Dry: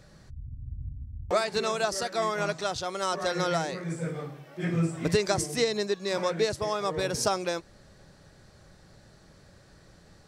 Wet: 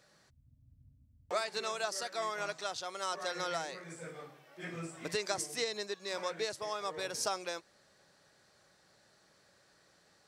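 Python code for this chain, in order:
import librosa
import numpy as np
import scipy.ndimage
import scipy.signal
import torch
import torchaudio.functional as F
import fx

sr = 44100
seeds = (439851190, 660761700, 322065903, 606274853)

y = fx.highpass(x, sr, hz=730.0, slope=6)
y = y * librosa.db_to_amplitude(-5.5)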